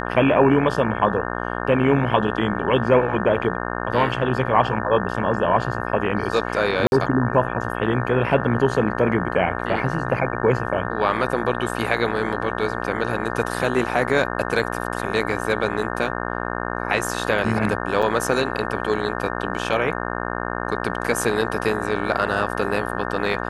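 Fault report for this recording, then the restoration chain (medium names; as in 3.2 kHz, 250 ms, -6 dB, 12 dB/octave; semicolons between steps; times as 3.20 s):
buzz 60 Hz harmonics 30 -27 dBFS
6.87–6.92 s: dropout 51 ms
18.02–18.03 s: dropout 5.7 ms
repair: de-hum 60 Hz, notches 30; interpolate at 6.87 s, 51 ms; interpolate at 18.02 s, 5.7 ms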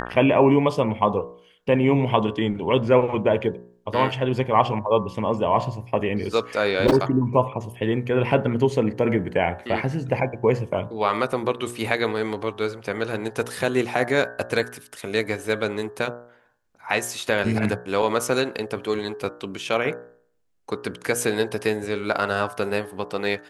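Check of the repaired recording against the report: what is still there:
nothing left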